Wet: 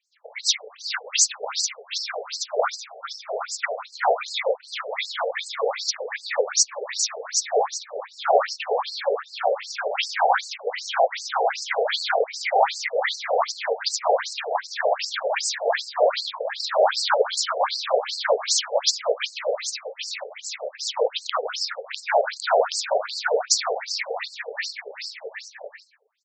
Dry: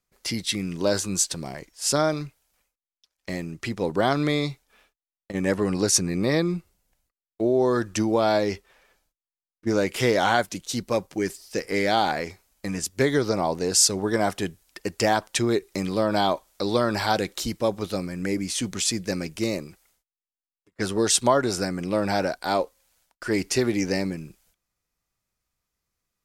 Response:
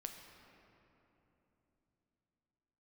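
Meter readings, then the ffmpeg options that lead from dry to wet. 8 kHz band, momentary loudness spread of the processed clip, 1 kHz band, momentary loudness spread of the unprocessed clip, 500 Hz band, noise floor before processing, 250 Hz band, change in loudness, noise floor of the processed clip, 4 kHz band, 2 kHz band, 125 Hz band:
+1.0 dB, 11 LU, +4.0 dB, 12 LU, +1.5 dB, under -85 dBFS, under -30 dB, +0.5 dB, -49 dBFS, +4.5 dB, +3.0 dB, under -40 dB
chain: -filter_complex "[0:a]afftfilt=real='hypot(re,im)*cos(2*PI*random(0))':imag='hypot(re,im)*sin(2*PI*random(1))':win_size=512:overlap=0.75,aeval=exprs='(mod(4.47*val(0)+1,2)-1)/4.47':c=same,asplit=2[a][b];[b]aecho=0:1:650|1105|1424|1646|1803:0.631|0.398|0.251|0.158|0.1[c];[a][c]amix=inputs=2:normalize=0,alimiter=level_in=20dB:limit=-1dB:release=50:level=0:latency=1,afftfilt=real='re*between(b*sr/1024,570*pow(6000/570,0.5+0.5*sin(2*PI*2.6*pts/sr))/1.41,570*pow(6000/570,0.5+0.5*sin(2*PI*2.6*pts/sr))*1.41)':imag='im*between(b*sr/1024,570*pow(6000/570,0.5+0.5*sin(2*PI*2.6*pts/sr))/1.41,570*pow(6000/570,0.5+0.5*sin(2*PI*2.6*pts/sr))*1.41)':win_size=1024:overlap=0.75,volume=-3.5dB"

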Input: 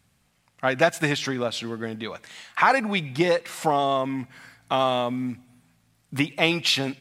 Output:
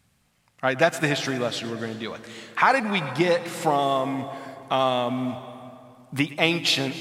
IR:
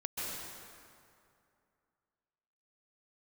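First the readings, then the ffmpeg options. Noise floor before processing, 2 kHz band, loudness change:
-66 dBFS, +0.5 dB, +0.5 dB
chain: -filter_complex "[0:a]asplit=2[a][b];[1:a]atrim=start_sample=2205,highshelf=f=10k:g=5.5,adelay=114[c];[b][c]afir=irnorm=-1:irlink=0,volume=-15.5dB[d];[a][d]amix=inputs=2:normalize=0"

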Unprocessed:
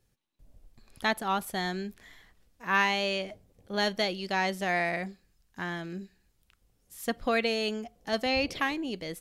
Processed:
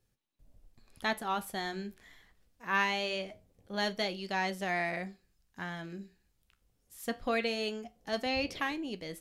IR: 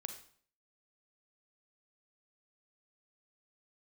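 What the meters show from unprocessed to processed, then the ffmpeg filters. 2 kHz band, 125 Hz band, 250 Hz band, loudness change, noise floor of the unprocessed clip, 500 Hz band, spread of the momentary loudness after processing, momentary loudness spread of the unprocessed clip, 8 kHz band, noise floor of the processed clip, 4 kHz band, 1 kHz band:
-4.0 dB, -4.5 dB, -4.5 dB, -4.5 dB, -71 dBFS, -4.5 dB, 13 LU, 12 LU, -4.5 dB, -75 dBFS, -4.5 dB, -4.0 dB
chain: -af "flanger=delay=9.4:depth=5.6:regen=-72:speed=0.23:shape=triangular"

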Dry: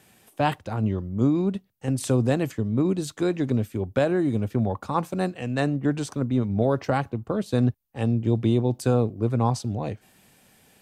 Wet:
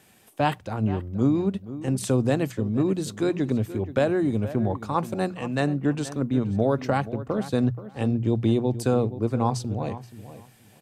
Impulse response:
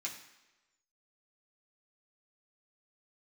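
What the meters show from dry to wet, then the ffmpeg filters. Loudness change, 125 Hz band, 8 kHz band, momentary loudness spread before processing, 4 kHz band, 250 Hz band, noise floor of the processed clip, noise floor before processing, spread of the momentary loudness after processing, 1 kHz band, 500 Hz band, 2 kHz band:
-0.5 dB, -1.5 dB, 0.0 dB, 6 LU, 0.0 dB, 0.0 dB, -54 dBFS, -62 dBFS, 6 LU, 0.0 dB, 0.0 dB, 0.0 dB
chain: -filter_complex "[0:a]bandreject=f=60:t=h:w=6,bandreject=f=120:t=h:w=6,bandreject=f=180:t=h:w=6,asplit=2[a][b];[b]adelay=477,lowpass=f=2.6k:p=1,volume=-14dB,asplit=2[c][d];[d]adelay=477,lowpass=f=2.6k:p=1,volume=0.2[e];[c][e]amix=inputs=2:normalize=0[f];[a][f]amix=inputs=2:normalize=0"

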